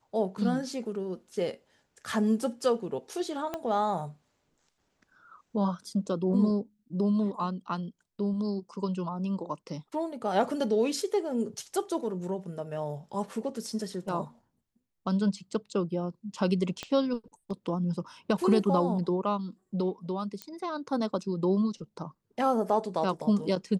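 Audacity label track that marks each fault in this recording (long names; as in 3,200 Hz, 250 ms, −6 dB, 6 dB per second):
3.540000	3.540000	click −19 dBFS
16.830000	16.830000	click −20 dBFS
20.420000	20.420000	click −21 dBFS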